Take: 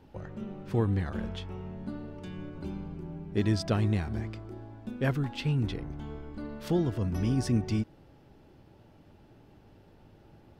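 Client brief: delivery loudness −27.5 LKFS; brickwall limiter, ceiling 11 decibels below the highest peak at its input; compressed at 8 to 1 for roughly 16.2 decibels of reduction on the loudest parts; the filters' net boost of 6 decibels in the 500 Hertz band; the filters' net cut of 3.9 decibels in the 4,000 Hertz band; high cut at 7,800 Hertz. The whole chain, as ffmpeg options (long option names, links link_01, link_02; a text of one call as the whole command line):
ffmpeg -i in.wav -af "lowpass=7800,equalizer=frequency=500:width_type=o:gain=8,equalizer=frequency=4000:width_type=o:gain=-5,acompressor=threshold=-36dB:ratio=8,volume=17.5dB,alimiter=limit=-18dB:level=0:latency=1" out.wav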